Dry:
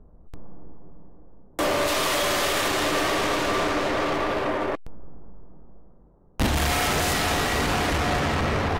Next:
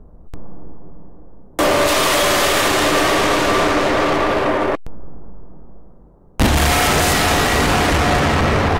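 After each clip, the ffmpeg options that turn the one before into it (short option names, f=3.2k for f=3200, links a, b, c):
-filter_complex "[0:a]highshelf=f=7.7k:g=-8.5,acrossover=split=7100[a][b];[b]acontrast=62[c];[a][c]amix=inputs=2:normalize=0,volume=8.5dB"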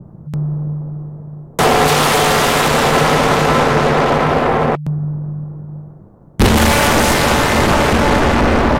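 -af "aeval=exprs='val(0)*sin(2*PI*150*n/s)':c=same,adynamicequalizer=threshold=0.0251:dfrequency=1600:dqfactor=0.7:tfrequency=1600:tqfactor=0.7:attack=5:release=100:ratio=0.375:range=2:mode=cutabove:tftype=highshelf,volume=6.5dB"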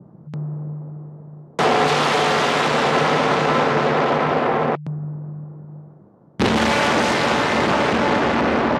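-af "highpass=160,lowpass=5k,volume=-4.5dB"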